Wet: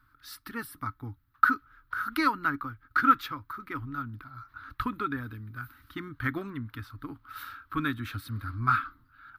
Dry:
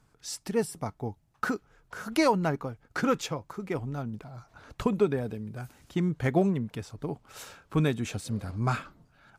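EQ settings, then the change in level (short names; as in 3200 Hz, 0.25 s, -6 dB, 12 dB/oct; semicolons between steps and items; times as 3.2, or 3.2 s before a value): EQ curve 110 Hz 0 dB, 180 Hz -19 dB, 280 Hz +2 dB, 420 Hz -18 dB, 710 Hz -20 dB, 1300 Hz +12 dB, 2600 Hz -5 dB, 4000 Hz 0 dB, 7100 Hz -21 dB, 14000 Hz +8 dB; 0.0 dB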